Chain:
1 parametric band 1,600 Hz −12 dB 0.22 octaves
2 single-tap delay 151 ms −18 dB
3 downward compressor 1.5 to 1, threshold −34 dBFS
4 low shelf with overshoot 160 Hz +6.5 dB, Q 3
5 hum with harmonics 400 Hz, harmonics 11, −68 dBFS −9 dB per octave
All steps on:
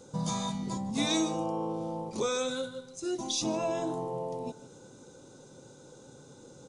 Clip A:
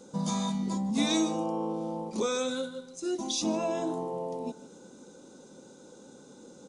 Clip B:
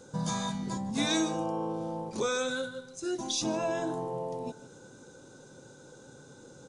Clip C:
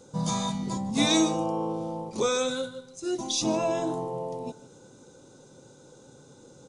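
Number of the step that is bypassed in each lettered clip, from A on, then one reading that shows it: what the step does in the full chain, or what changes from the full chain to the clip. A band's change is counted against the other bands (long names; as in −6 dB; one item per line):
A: 4, change in momentary loudness spread −12 LU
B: 1, 2 kHz band +5.0 dB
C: 3, change in momentary loudness spread −11 LU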